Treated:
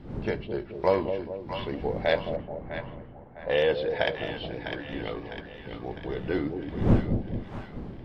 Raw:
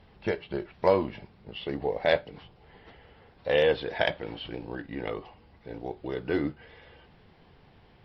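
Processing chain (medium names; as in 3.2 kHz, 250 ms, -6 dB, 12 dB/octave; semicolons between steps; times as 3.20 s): wind noise 240 Hz -34 dBFS; two-band feedback delay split 740 Hz, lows 216 ms, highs 653 ms, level -7 dB; 2.36–3.97 s: level-controlled noise filter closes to 980 Hz, open at -19.5 dBFS; trim -1 dB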